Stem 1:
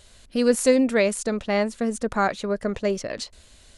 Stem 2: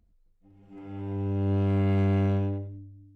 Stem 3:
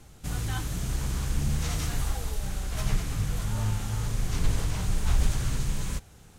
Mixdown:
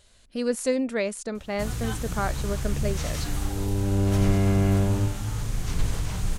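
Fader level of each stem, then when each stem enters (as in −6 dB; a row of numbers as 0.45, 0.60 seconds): −6.5, +2.5, 0.0 decibels; 0.00, 2.50, 1.35 seconds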